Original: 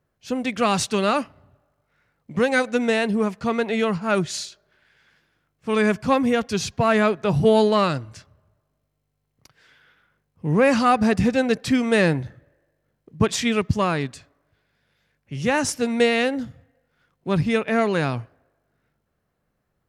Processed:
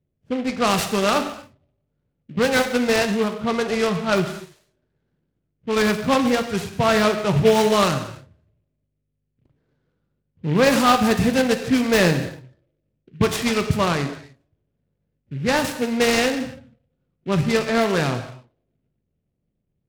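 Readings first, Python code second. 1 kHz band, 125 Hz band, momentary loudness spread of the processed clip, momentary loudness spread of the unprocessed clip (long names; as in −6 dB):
+1.5 dB, +1.5 dB, 14 LU, 13 LU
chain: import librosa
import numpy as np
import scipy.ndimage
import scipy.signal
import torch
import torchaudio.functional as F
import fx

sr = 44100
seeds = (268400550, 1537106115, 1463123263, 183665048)

y = fx.env_lowpass(x, sr, base_hz=340.0, full_db=-14.0)
y = fx.high_shelf(y, sr, hz=4900.0, db=11.0)
y = fx.rev_gated(y, sr, seeds[0], gate_ms=310, shape='falling', drr_db=6.0)
y = fx.noise_mod_delay(y, sr, seeds[1], noise_hz=2100.0, depth_ms=0.048)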